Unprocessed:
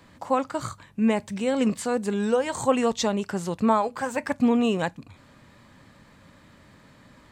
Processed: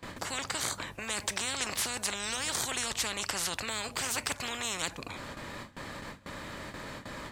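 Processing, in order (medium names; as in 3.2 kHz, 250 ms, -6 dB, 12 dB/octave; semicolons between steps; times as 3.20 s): gate with hold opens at -43 dBFS; spectrum-flattening compressor 10:1; trim -3 dB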